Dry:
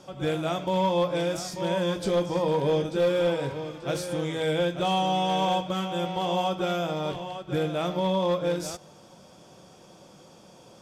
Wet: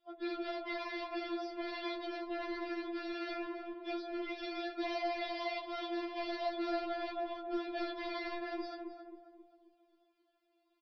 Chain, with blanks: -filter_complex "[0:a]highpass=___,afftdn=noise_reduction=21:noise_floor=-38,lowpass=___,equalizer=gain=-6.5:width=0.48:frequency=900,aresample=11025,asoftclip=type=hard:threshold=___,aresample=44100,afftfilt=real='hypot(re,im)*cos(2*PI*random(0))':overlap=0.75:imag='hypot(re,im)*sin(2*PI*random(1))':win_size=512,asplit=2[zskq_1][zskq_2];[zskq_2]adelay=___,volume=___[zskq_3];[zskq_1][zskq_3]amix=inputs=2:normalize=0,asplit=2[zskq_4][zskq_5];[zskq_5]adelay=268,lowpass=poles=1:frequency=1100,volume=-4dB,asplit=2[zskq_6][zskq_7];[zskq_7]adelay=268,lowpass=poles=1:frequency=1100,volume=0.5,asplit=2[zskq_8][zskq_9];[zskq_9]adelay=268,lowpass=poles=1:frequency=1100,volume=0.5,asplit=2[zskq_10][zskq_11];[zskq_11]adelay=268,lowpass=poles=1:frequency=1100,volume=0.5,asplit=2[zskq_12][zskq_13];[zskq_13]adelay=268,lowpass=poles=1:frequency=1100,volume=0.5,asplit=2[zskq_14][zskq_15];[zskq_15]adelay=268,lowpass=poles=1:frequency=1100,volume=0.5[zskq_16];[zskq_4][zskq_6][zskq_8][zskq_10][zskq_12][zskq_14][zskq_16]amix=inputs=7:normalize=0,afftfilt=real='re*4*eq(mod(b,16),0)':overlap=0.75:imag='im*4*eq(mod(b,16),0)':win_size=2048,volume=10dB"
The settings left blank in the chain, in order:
440, 3100, -39.5dB, 15, -9dB